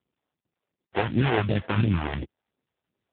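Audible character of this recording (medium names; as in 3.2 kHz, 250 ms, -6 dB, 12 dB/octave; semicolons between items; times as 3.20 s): aliases and images of a low sample rate 1.2 kHz, jitter 20%; phasing stages 2, 2.8 Hz, lowest notch 140–1100 Hz; AMR-NB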